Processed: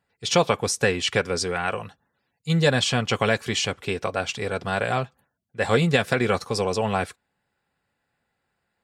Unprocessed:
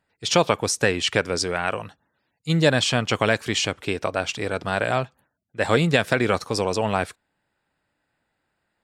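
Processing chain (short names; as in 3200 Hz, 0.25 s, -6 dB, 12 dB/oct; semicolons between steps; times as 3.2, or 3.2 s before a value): notch comb 310 Hz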